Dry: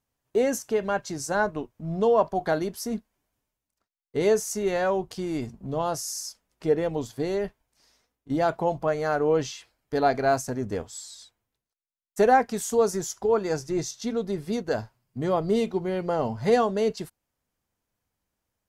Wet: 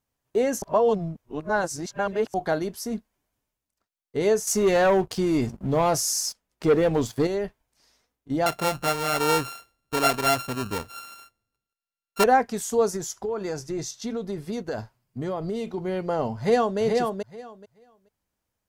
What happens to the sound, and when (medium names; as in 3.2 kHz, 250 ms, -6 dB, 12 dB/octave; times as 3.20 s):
0.62–2.34 s: reverse
4.47–7.27 s: waveshaping leveller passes 2
8.46–12.24 s: sorted samples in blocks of 32 samples
12.96–15.78 s: compression, threshold -25 dBFS
16.37–16.79 s: echo throw 430 ms, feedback 15%, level -3.5 dB